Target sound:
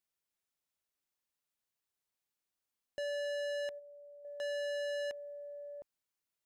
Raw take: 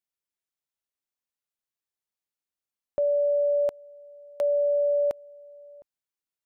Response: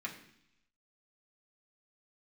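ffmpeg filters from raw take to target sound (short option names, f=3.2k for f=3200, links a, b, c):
-filter_complex "[0:a]asettb=1/sr,asplit=3[a][b][c];[a]atrim=end=3.254[d];[b]atrim=start=3.25:end=4.25,asetpts=PTS-STARTPTS,afade=t=in:d=0.004:c=qsin,afade=t=out:st=0.996:d=0.004:c=qsin,agate=range=-8dB:threshold=-36dB:ratio=16:detection=peak[e];[c]atrim=start=4.246[f];[d][e]acrossfade=d=0.004:c1=hsin:c2=qsin[g];[g][f]acrossfade=d=0.004:c1=qsin:c2=hsin,asoftclip=type=tanh:threshold=-38dB,volume=1.5dB"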